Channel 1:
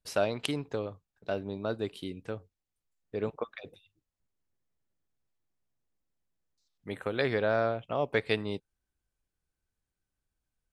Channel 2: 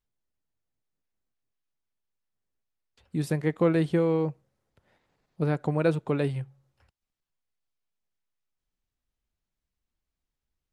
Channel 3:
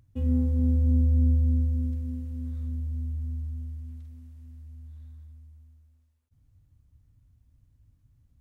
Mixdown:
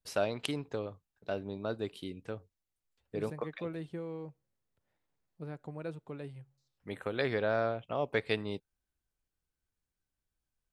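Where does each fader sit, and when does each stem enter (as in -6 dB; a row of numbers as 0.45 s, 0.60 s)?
-3.0 dB, -16.5 dB, mute; 0.00 s, 0.00 s, mute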